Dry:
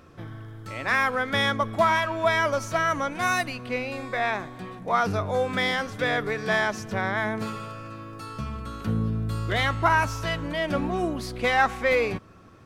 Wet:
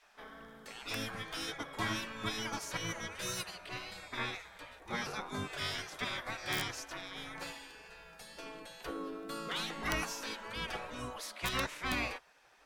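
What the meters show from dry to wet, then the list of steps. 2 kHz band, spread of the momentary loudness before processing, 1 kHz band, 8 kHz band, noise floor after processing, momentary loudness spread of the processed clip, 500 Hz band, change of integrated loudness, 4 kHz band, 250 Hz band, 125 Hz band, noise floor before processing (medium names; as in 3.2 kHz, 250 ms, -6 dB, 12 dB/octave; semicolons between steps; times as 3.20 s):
-13.5 dB, 15 LU, -16.5 dB, -2.5 dB, -59 dBFS, 13 LU, -18.0 dB, -13.5 dB, -6.0 dB, -13.0 dB, -16.0 dB, -45 dBFS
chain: spectral gate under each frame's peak -15 dB weak; wow and flutter 21 cents; integer overflow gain 19.5 dB; trim -2.5 dB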